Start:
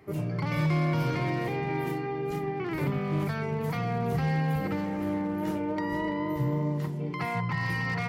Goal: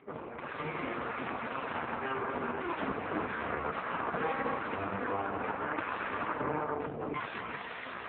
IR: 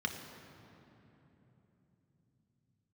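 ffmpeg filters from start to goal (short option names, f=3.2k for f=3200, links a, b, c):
-filter_complex "[0:a]lowshelf=f=65:g=-9,bandreject=f=60:t=h:w=6,bandreject=f=120:t=h:w=6,bandreject=f=180:t=h:w=6,bandreject=f=240:t=h:w=6,bandreject=f=300:t=h:w=6,bandreject=f=360:t=h:w=6,bandreject=f=420:t=h:w=6,aeval=exprs='0.126*(cos(1*acos(clip(val(0)/0.126,-1,1)))-cos(1*PI/2))+0.00112*(cos(4*acos(clip(val(0)/0.126,-1,1)))-cos(4*PI/2))+0.00126*(cos(5*acos(clip(val(0)/0.126,-1,1)))-cos(5*PI/2))+0.002*(cos(6*acos(clip(val(0)/0.126,-1,1)))-cos(6*PI/2))+0.0562*(cos(7*acos(clip(val(0)/0.126,-1,1)))-cos(7*PI/2))':c=same,dynaudnorm=f=310:g=9:m=12.5dB,asplit=2[a][b];[1:a]atrim=start_sample=2205,atrim=end_sample=3528[c];[b][c]afir=irnorm=-1:irlink=0,volume=-7.5dB[d];[a][d]amix=inputs=2:normalize=0,acompressor=threshold=-26dB:ratio=2.5,volume=-5.5dB" -ar 8000 -c:a libopencore_amrnb -b:a 4750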